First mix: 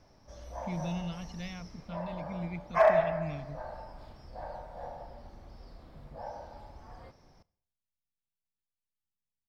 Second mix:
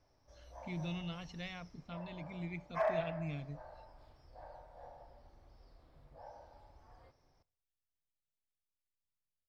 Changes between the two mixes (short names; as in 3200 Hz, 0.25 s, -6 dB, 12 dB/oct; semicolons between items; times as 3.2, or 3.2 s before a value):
background -11.0 dB; master: add bell 200 Hz -12 dB 0.37 oct